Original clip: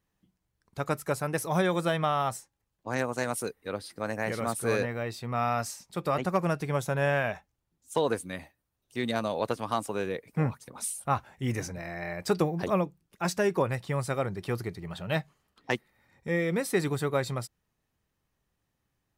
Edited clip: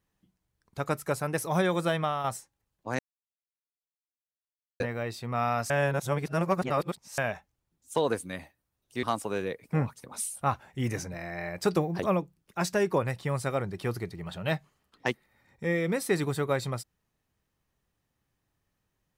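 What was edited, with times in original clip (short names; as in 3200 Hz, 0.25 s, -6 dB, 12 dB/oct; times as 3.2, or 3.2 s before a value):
1.95–2.24 fade out, to -6 dB
2.99–4.8 mute
5.7–7.18 reverse
9.03–9.67 cut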